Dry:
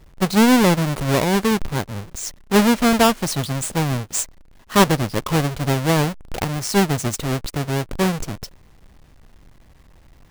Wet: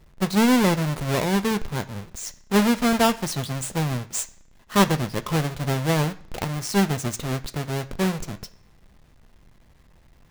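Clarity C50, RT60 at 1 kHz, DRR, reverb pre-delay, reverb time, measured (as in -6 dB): 17.5 dB, 0.65 s, 8.5 dB, 3 ms, 0.65 s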